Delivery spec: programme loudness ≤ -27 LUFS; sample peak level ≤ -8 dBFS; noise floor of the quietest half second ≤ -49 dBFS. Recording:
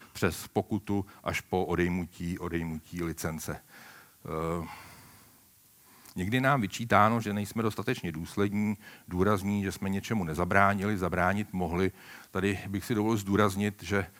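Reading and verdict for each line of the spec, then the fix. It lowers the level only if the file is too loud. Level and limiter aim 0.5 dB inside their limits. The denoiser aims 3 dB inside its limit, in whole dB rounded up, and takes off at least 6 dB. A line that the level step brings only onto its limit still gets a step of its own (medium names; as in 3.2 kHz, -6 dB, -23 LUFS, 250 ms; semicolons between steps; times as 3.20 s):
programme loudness -30.0 LUFS: pass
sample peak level -6.0 dBFS: fail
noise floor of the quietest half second -60 dBFS: pass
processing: peak limiter -8.5 dBFS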